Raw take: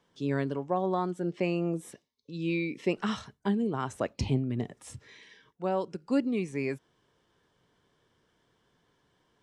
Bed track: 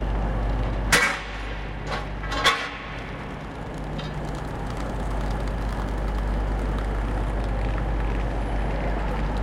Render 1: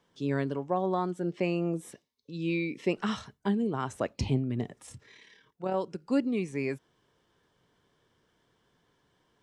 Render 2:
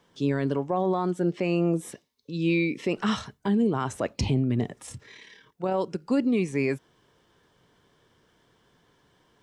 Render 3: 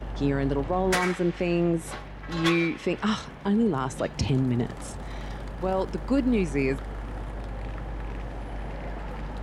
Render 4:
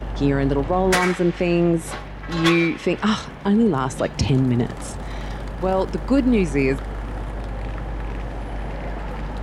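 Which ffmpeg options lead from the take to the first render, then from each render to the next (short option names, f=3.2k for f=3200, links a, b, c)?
-filter_complex "[0:a]asettb=1/sr,asplit=3[a][b][c];[a]atrim=end=4.864[d];[b]atrim=start=4.86:end=5.74,asetpts=PTS-STARTPTS,afade=t=in:d=0.004:c=qsin,afade=t=out:st=0.876:d=0.004:c=qsin,tremolo=f=36:d=0.462[e];[c]atrim=start=5.736[f];[d][e]acrossfade=d=0.004:c1=hsin:c2=qsin[g];[g][f]acrossfade=d=0.004:c1=qsin:c2=hsin"
-af "acontrast=69,alimiter=limit=-16dB:level=0:latency=1:release=22"
-filter_complex "[1:a]volume=-9dB[a];[0:a][a]amix=inputs=2:normalize=0"
-af "volume=6dB"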